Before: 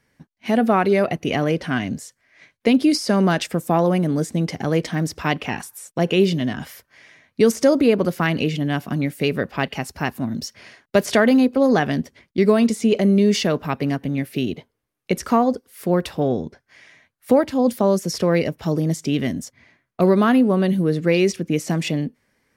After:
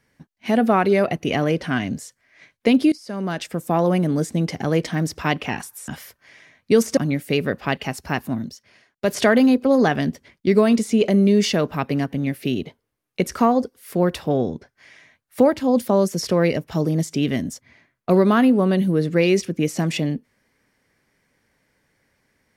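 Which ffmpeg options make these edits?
ffmpeg -i in.wav -filter_complex "[0:a]asplit=6[link_01][link_02][link_03][link_04][link_05][link_06];[link_01]atrim=end=2.92,asetpts=PTS-STARTPTS,afade=type=out:start_time=2.916:duration=0.004:curve=hsin:silence=0.0749894[link_07];[link_02]atrim=start=2.92:end=5.882,asetpts=PTS-STARTPTS,afade=type=in:duration=1.02:silence=0.0749894[link_08];[link_03]atrim=start=6.568:end=7.662[link_09];[link_04]atrim=start=8.878:end=10.43,asetpts=PTS-STARTPTS,afade=type=out:start_time=1.412:duration=0.14:silence=0.298538[link_10];[link_05]atrim=start=10.43:end=10.91,asetpts=PTS-STARTPTS,volume=-10.5dB[link_11];[link_06]atrim=start=10.91,asetpts=PTS-STARTPTS,afade=type=in:duration=0.14:silence=0.298538[link_12];[link_07][link_08]concat=n=2:v=0:a=1[link_13];[link_13][link_09]acrossfade=duration=0.004:curve1=hsin:curve2=hsin[link_14];[link_10][link_11][link_12]concat=n=3:v=0:a=1[link_15];[link_14][link_15]acrossfade=duration=0.004:curve1=hsin:curve2=hsin" out.wav

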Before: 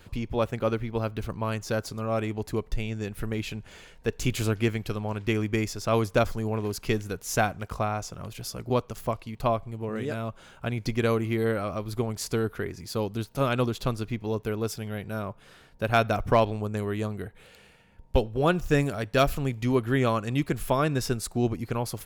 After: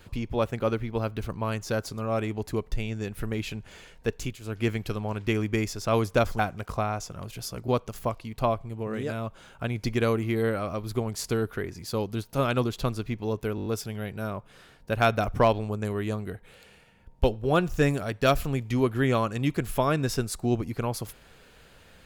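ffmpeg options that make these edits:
ffmpeg -i in.wav -filter_complex "[0:a]asplit=9[link_01][link_02][link_03][link_04][link_05][link_06][link_07][link_08][link_09];[link_01]atrim=end=4.39,asetpts=PTS-STARTPTS,afade=type=out:start_time=4.1:duration=0.29:silence=0.125893[link_10];[link_02]atrim=start=4.39:end=4.41,asetpts=PTS-STARTPTS,volume=-18dB[link_11];[link_03]atrim=start=4.41:end=6.392,asetpts=PTS-STARTPTS,afade=type=in:duration=0.29:silence=0.125893[link_12];[link_04]atrim=start=7.408:end=14.602[link_13];[link_05]atrim=start=14.578:end=14.602[link_14];[link_06]atrim=start=14.578:end=14.602[link_15];[link_07]atrim=start=14.578:end=14.602[link_16];[link_08]atrim=start=14.578:end=14.602[link_17];[link_09]atrim=start=14.578[link_18];[link_10][link_11][link_12]concat=n=3:v=0:a=1[link_19];[link_19][link_13]acrossfade=duration=0.004:curve1=hsin:curve2=hsin[link_20];[link_20][link_14]acrossfade=duration=0.004:curve1=hsin:curve2=hsin[link_21];[link_21][link_15]acrossfade=duration=0.004:curve1=hsin:curve2=hsin[link_22];[link_22][link_16]acrossfade=duration=0.004:curve1=hsin:curve2=hsin[link_23];[link_23][link_17]acrossfade=duration=0.004:curve1=hsin:curve2=hsin[link_24];[link_24][link_18]acrossfade=duration=0.004:curve1=hsin:curve2=hsin" out.wav

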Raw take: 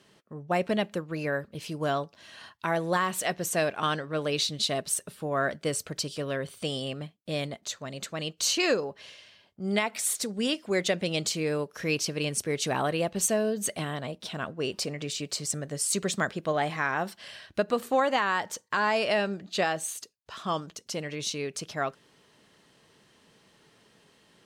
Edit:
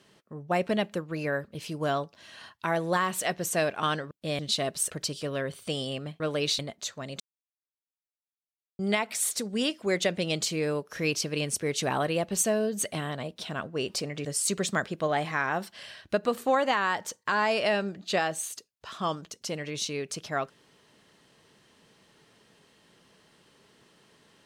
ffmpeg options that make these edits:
ffmpeg -i in.wav -filter_complex "[0:a]asplit=9[link_01][link_02][link_03][link_04][link_05][link_06][link_07][link_08][link_09];[link_01]atrim=end=4.112[link_10];[link_02]atrim=start=7.148:end=7.432[link_11];[link_03]atrim=start=4.498:end=5.012[link_12];[link_04]atrim=start=5.848:end=7.152[link_13];[link_05]atrim=start=4.108:end=4.502[link_14];[link_06]atrim=start=7.428:end=8.04,asetpts=PTS-STARTPTS,afade=type=out:start_time=0.608:duration=0.004:curve=hsin[link_15];[link_07]atrim=start=8.04:end=9.63,asetpts=PTS-STARTPTS,volume=0[link_16];[link_08]atrim=start=9.63:end=15.092,asetpts=PTS-STARTPTS,afade=type=in:duration=0.004:curve=hsin[link_17];[link_09]atrim=start=15.698[link_18];[link_10][link_11]acrossfade=duration=0.004:curve1=hsin:curve2=hsin[link_19];[link_19][link_12]acrossfade=duration=0.004:curve1=hsin:curve2=hsin[link_20];[link_20][link_13]acrossfade=duration=0.004:curve1=hsin:curve2=hsin[link_21];[link_21][link_14]acrossfade=duration=0.004:curve1=hsin:curve2=hsin[link_22];[link_15][link_16][link_17]concat=n=3:v=0:a=1[link_23];[link_22][link_23]acrossfade=duration=0.004:curve1=hsin:curve2=hsin[link_24];[link_24][link_18]acrossfade=duration=0.004:curve1=hsin:curve2=hsin" out.wav

